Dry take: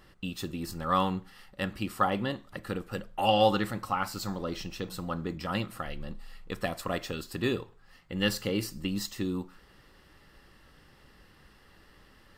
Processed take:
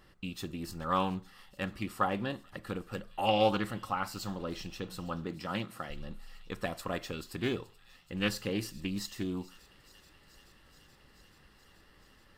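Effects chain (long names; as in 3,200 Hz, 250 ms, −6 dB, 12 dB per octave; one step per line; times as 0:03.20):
0:05.25–0:05.90: high-pass filter 110 Hz
delay with a high-pass on its return 430 ms, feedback 81%, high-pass 2,800 Hz, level −20 dB
highs frequency-modulated by the lows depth 0.19 ms
level −3.5 dB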